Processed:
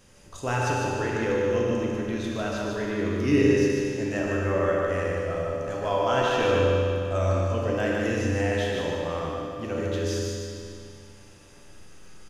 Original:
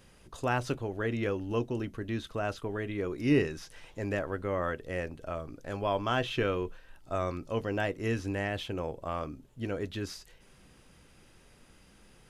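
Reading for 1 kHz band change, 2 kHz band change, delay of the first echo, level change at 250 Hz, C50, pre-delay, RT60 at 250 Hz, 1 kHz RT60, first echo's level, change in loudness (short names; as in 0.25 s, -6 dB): +6.5 dB, +6.0 dB, 0.149 s, +7.0 dB, -3.5 dB, 10 ms, 2.5 s, 2.5 s, -4.0 dB, +7.5 dB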